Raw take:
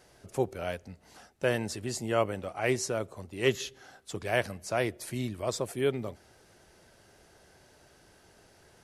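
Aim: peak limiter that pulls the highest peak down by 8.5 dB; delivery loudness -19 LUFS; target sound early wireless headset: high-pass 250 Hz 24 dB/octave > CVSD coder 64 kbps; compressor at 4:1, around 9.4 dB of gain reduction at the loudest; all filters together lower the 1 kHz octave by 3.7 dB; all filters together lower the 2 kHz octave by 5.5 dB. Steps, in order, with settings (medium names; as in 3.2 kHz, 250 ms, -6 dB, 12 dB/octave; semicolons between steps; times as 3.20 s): peaking EQ 1 kHz -4.5 dB; peaking EQ 2 kHz -5.5 dB; compression 4:1, threshold -34 dBFS; peak limiter -31 dBFS; high-pass 250 Hz 24 dB/octave; CVSD coder 64 kbps; trim +24.5 dB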